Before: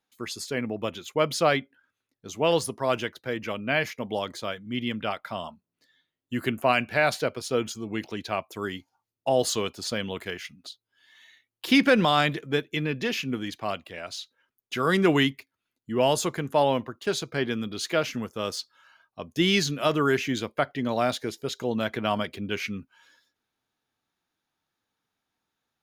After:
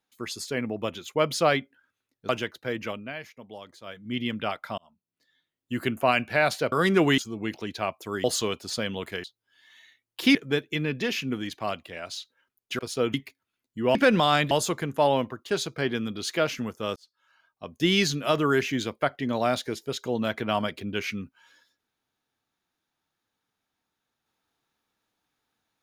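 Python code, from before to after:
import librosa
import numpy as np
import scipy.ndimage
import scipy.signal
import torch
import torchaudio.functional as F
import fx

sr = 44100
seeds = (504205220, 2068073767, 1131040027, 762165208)

y = fx.edit(x, sr, fx.cut(start_s=2.29, length_s=0.61),
    fx.fade_down_up(start_s=3.46, length_s=1.26, db=-13.0, fade_s=0.28),
    fx.fade_in_span(start_s=5.39, length_s=1.21, curve='qsin'),
    fx.swap(start_s=7.33, length_s=0.35, other_s=14.8, other_length_s=0.46),
    fx.cut(start_s=8.74, length_s=0.64),
    fx.cut(start_s=10.38, length_s=0.31),
    fx.move(start_s=11.8, length_s=0.56, to_s=16.07),
    fx.fade_in_span(start_s=18.52, length_s=0.86), tone=tone)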